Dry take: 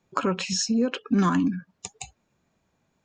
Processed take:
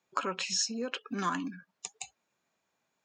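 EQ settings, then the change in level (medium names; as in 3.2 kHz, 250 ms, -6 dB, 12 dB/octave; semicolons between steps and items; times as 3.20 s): high-pass 850 Hz 6 dB/octave; -3.0 dB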